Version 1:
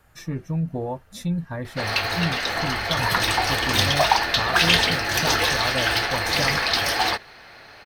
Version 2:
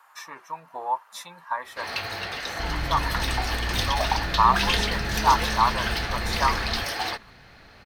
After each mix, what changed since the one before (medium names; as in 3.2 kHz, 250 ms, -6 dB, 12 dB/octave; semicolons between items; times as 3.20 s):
speech: add resonant high-pass 1 kHz, resonance Q 6.8; first sound -7.0 dB; second sound +11.5 dB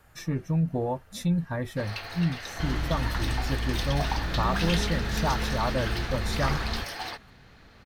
speech: remove resonant high-pass 1 kHz, resonance Q 6.8; first sound -7.0 dB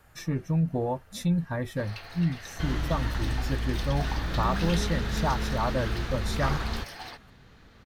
first sound -6.0 dB